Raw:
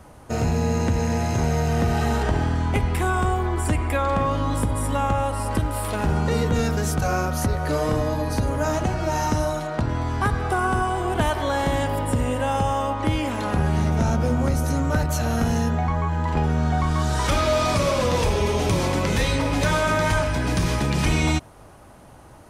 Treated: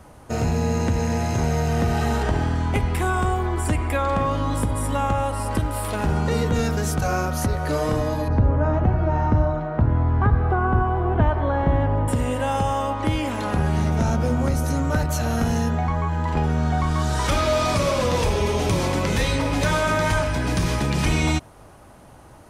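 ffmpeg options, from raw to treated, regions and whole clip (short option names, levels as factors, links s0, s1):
-filter_complex "[0:a]asettb=1/sr,asplit=3[s0][s1][s2];[s0]atrim=end=8.284[s3];[s1]atrim=start=8.28:end=12.08,asetpts=PTS-STARTPTS,afade=t=in:d=0.004:c=qsin,afade=t=out:st=3.796:d=0.004:c=qsin,lowpass=1500,equalizer=f=71:w=0.55:g=7.5[s4];[s2]atrim=start=12.076[s5];[s3][s4]acrossfade=d=0.004:c1=hsin:c2=qsin[s6];[s6][s5]acrossfade=d=0.004:c1=qsin:c2=hsin"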